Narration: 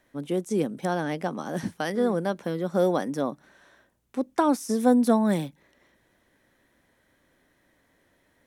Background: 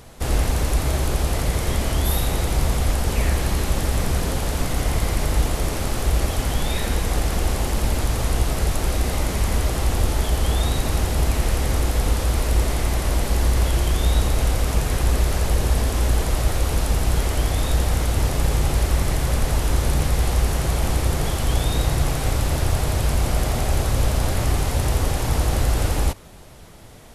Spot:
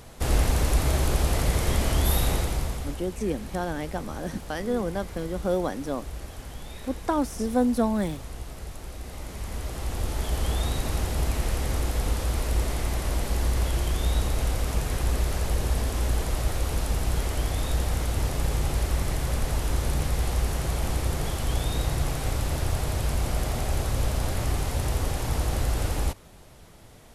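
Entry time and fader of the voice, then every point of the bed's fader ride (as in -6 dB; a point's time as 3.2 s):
2.70 s, -3.0 dB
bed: 2.31 s -2 dB
3.08 s -17 dB
8.97 s -17 dB
10.39 s -6 dB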